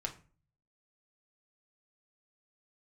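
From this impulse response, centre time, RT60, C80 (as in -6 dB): 9 ms, 0.40 s, 18.5 dB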